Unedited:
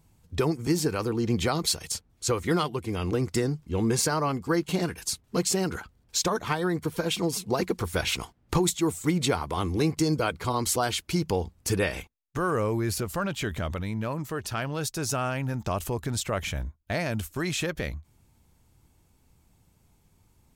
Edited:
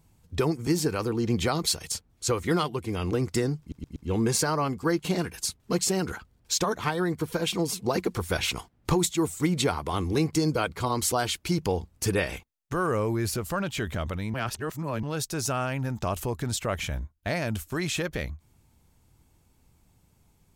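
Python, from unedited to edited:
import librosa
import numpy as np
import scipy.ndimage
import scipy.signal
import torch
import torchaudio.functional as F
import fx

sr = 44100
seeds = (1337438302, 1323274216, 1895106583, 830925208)

y = fx.edit(x, sr, fx.stutter(start_s=3.6, slice_s=0.12, count=4),
    fx.reverse_span(start_s=13.98, length_s=0.69), tone=tone)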